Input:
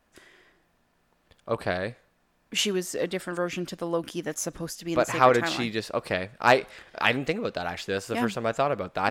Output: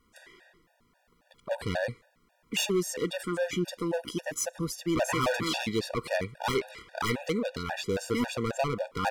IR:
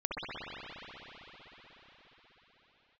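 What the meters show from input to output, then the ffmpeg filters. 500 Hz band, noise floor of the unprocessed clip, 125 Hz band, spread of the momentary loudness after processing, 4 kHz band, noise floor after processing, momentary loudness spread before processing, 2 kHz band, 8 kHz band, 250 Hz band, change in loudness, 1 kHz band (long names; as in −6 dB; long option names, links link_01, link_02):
−4.0 dB, −69 dBFS, −0.5 dB, 6 LU, −3.0 dB, −70 dBFS, 11 LU, −5.5 dB, −0.5 dB, −1.0 dB, −4.0 dB, −7.5 dB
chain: -af "volume=25dB,asoftclip=hard,volume=-25dB,afftfilt=real='re*gt(sin(2*PI*3.7*pts/sr)*(1-2*mod(floor(b*sr/1024/480),2)),0)':imag='im*gt(sin(2*PI*3.7*pts/sr)*(1-2*mod(floor(b*sr/1024/480),2)),0)':win_size=1024:overlap=0.75,volume=3.5dB"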